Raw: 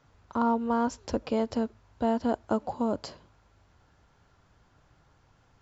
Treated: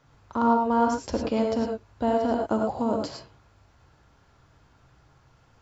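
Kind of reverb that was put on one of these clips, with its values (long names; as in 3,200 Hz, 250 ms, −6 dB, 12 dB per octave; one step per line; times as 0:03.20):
reverb whose tail is shaped and stops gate 130 ms rising, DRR 1.5 dB
level +1.5 dB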